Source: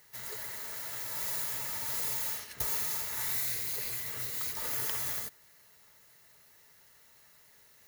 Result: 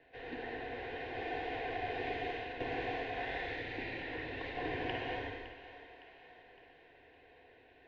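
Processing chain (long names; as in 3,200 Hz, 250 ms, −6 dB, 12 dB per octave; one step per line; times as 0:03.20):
low-shelf EQ 340 Hz +11.5 dB
phaser with its sweep stopped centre 380 Hz, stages 6
echo with a time of its own for lows and highs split 670 Hz, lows 202 ms, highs 561 ms, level −13.5 dB
reverb whose tail is shaped and stops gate 270 ms flat, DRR 0 dB
single-sideband voice off tune −180 Hz 280–2,900 Hz
level +7 dB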